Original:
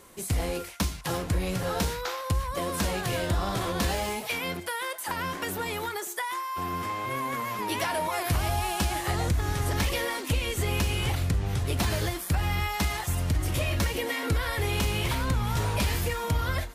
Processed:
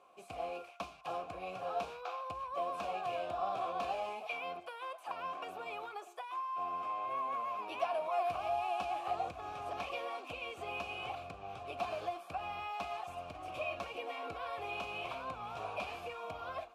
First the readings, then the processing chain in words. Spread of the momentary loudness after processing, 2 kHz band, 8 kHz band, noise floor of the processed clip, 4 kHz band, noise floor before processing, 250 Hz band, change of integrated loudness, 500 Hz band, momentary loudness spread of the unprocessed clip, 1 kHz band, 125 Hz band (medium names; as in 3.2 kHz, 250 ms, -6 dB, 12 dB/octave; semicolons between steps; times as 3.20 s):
8 LU, -12.5 dB, under -25 dB, -54 dBFS, -15.5 dB, -38 dBFS, -20.5 dB, -11.0 dB, -7.0 dB, 4 LU, -5.0 dB, -29.5 dB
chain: vowel filter a; trim +2.5 dB